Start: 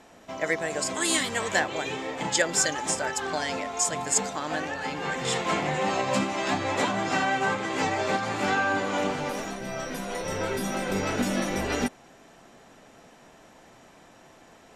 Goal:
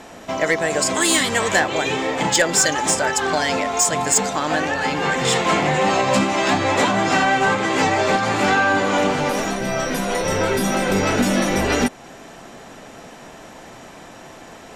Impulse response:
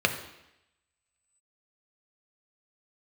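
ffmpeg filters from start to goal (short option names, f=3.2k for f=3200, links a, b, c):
-filter_complex "[0:a]asplit=2[a][b];[b]acompressor=threshold=-33dB:ratio=6,volume=-0.5dB[c];[a][c]amix=inputs=2:normalize=0,asoftclip=type=tanh:threshold=-14.5dB,volume=7dB"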